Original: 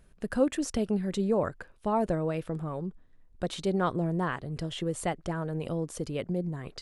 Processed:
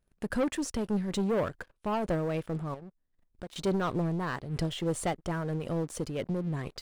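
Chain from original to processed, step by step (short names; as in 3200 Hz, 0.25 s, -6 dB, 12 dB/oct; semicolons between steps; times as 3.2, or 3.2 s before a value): 2.74–3.56 compressor 2.5:1, threshold -49 dBFS, peak gain reduction 15 dB; sample leveller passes 3; noise-modulated level, depth 60%; gain -6 dB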